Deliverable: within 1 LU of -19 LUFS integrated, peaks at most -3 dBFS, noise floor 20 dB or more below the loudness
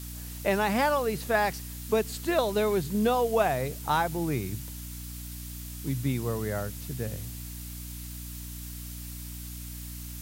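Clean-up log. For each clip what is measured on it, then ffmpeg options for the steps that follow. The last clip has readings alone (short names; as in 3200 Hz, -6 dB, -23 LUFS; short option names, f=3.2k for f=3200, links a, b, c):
hum 60 Hz; harmonics up to 300 Hz; hum level -38 dBFS; noise floor -40 dBFS; noise floor target -50 dBFS; loudness -30.0 LUFS; peak -11.5 dBFS; loudness target -19.0 LUFS
-> -af "bandreject=f=60:t=h:w=6,bandreject=f=120:t=h:w=6,bandreject=f=180:t=h:w=6,bandreject=f=240:t=h:w=6,bandreject=f=300:t=h:w=6"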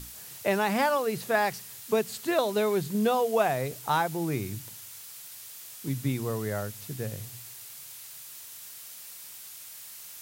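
hum none; noise floor -45 dBFS; noise floor target -49 dBFS
-> -af "afftdn=nr=6:nf=-45"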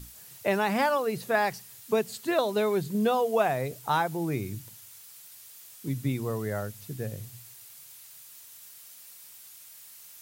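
noise floor -50 dBFS; loudness -28.5 LUFS; peak -11.5 dBFS; loudness target -19.0 LUFS
-> -af "volume=9.5dB,alimiter=limit=-3dB:level=0:latency=1"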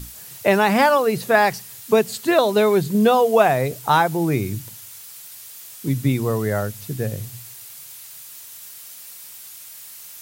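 loudness -19.0 LUFS; peak -3.0 dBFS; noise floor -40 dBFS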